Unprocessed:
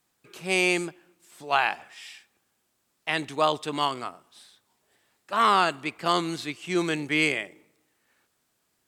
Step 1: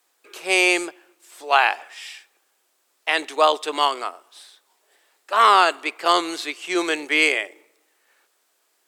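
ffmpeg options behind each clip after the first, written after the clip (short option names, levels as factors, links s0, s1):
-af "highpass=f=370:w=0.5412,highpass=f=370:w=1.3066,volume=2.11"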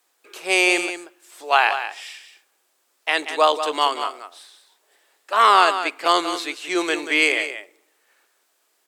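-af "aecho=1:1:185:0.316"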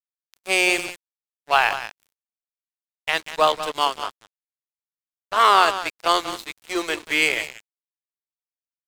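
-af "aeval=exprs='sgn(val(0))*max(abs(val(0))-0.0376,0)':c=same"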